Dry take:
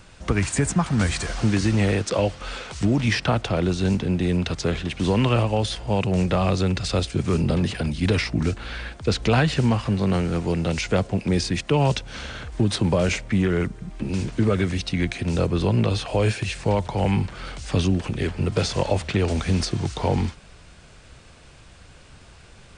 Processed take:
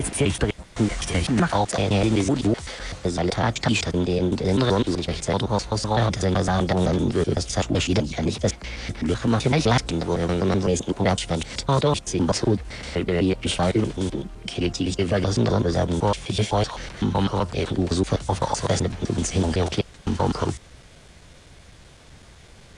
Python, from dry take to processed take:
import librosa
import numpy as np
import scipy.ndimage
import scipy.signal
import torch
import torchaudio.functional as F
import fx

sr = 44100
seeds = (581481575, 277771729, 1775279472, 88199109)

y = fx.block_reorder(x, sr, ms=127.0, group=6)
y = fx.formant_shift(y, sr, semitones=5)